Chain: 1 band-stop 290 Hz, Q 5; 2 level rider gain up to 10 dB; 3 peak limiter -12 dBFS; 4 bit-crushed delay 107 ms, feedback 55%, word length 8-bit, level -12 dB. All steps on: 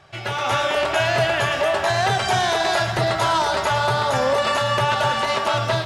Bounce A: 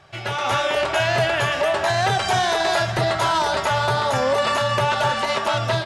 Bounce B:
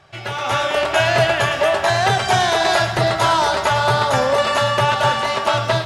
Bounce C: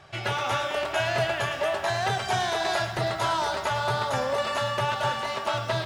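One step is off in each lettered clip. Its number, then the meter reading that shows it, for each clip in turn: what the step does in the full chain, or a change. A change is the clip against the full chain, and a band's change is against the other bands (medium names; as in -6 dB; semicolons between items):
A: 4, crest factor change -2.0 dB; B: 3, mean gain reduction 2.0 dB; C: 2, loudness change -6.5 LU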